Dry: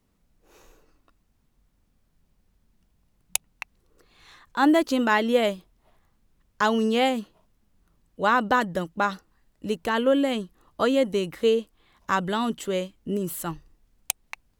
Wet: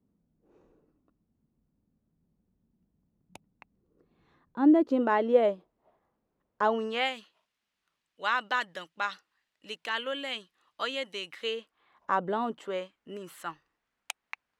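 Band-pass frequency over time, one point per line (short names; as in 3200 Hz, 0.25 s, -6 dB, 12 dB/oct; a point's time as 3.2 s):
band-pass, Q 1
4.59 s 220 Hz
5.11 s 550 Hz
6.63 s 550 Hz
7.15 s 2800 Hz
11.38 s 2800 Hz
12.3 s 510 Hz
12.96 s 1600 Hz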